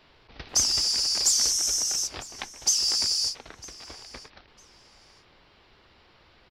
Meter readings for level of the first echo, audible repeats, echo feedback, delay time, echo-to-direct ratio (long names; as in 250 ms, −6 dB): −21.0 dB, 2, 22%, 953 ms, −21.0 dB